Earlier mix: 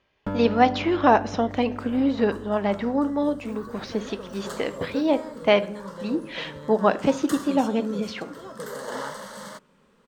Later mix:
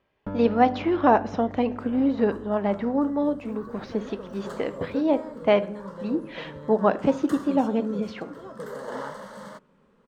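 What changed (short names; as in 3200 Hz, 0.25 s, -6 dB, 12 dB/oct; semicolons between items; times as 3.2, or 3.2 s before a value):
first sound -3.5 dB; master: add high shelf 2400 Hz -12 dB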